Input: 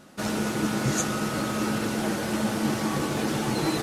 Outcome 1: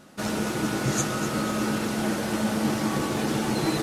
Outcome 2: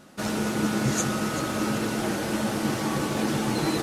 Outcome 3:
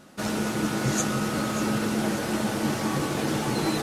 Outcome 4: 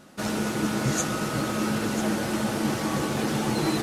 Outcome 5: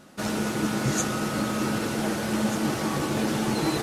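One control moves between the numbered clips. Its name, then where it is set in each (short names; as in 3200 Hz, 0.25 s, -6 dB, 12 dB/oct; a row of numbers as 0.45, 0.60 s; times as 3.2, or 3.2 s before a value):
echo with dull and thin repeats by turns, time: 0.124, 0.192, 0.293, 0.497, 0.77 s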